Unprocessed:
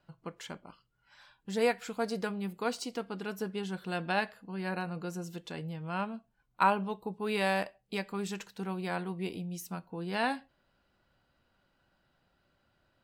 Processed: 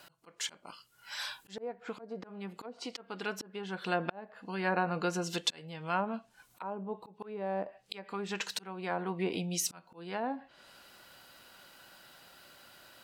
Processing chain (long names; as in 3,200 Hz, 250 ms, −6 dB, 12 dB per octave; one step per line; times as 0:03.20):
treble cut that deepens with the level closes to 540 Hz, closed at −28 dBFS
volume swells 755 ms
in parallel at +2.5 dB: downward compressor, threshold −53 dBFS, peak gain reduction 19 dB
on the sum: RIAA equalisation recording
level +9 dB